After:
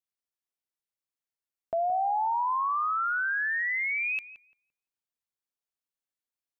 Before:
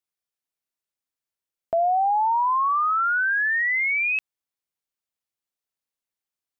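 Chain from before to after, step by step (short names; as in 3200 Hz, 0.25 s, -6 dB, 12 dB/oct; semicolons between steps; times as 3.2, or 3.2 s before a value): darkening echo 0.171 s, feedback 30%, low-pass 1300 Hz, level -10.5 dB; gain -6.5 dB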